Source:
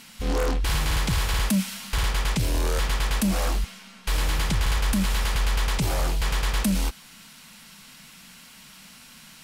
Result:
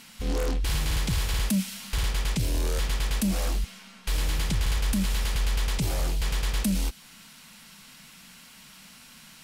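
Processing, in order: dynamic EQ 1100 Hz, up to -6 dB, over -44 dBFS, Q 0.73; gain -2 dB

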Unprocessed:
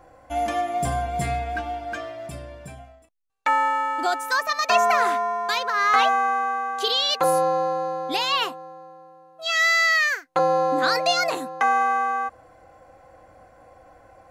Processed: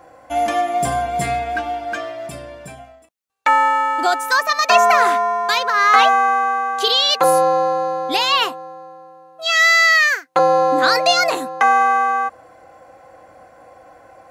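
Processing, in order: HPF 210 Hz 6 dB/oct; gain +6.5 dB

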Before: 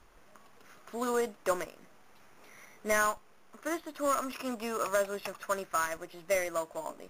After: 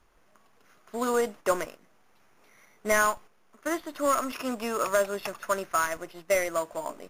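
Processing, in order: gate -47 dBFS, range -9 dB; gain +4.5 dB

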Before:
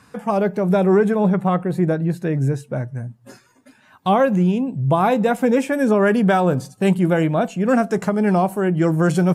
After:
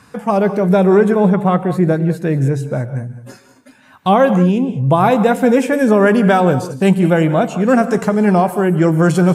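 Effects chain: non-linear reverb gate 0.23 s rising, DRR 11.5 dB; gain +4.5 dB

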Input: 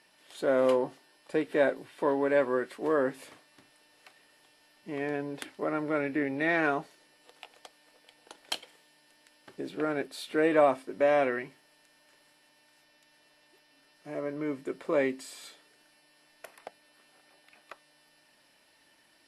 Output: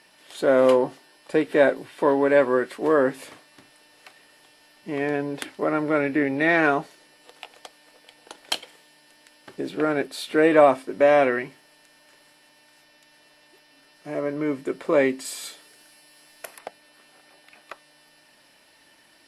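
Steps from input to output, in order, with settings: 15.25–16.59 high shelf 5600 Hz +8.5 dB; gain +7.5 dB

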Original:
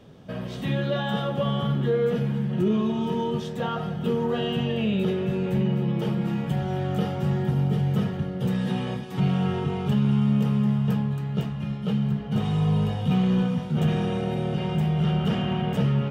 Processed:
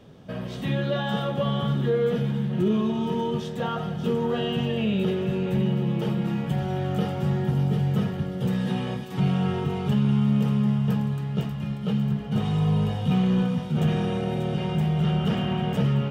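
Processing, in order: thin delay 0.588 s, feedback 55%, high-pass 3600 Hz, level -8 dB

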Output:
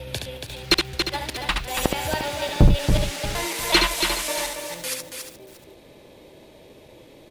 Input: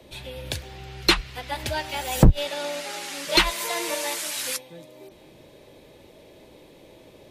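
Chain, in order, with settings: slices in reverse order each 0.186 s, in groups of 3; loudspeakers at several distances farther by 24 m -5 dB, 96 m -6 dB; lo-fi delay 0.352 s, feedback 35%, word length 6-bit, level -11 dB

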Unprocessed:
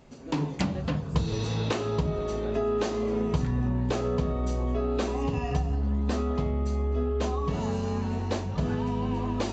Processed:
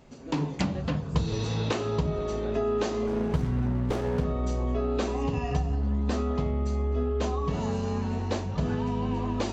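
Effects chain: 3.07–4.25 running maximum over 17 samples

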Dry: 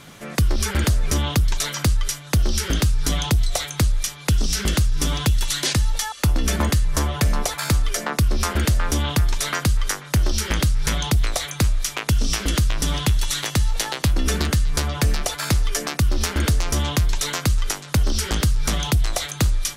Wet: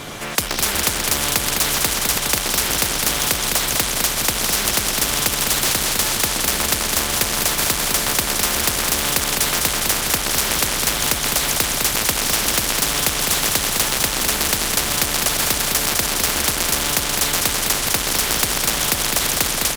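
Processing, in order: regenerating reverse delay 0.589 s, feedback 72%, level -11.5 dB; AGC; in parallel at -7.5 dB: sample-rate reducer 2300 Hz; on the sum: added harmonics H 5 -19 dB, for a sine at 0.5 dBFS; on a send: feedback echo 0.207 s, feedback 59%, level -7.5 dB; on the sum: spectral compressor 4:1; gain -5 dB

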